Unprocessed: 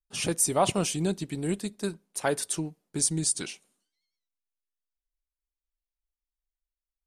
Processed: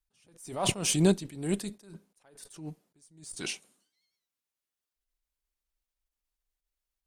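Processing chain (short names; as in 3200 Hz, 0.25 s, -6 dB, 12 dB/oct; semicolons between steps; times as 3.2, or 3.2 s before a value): added harmonics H 8 -32 dB, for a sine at -10.5 dBFS; attack slew limiter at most 100 dB/s; gain +5 dB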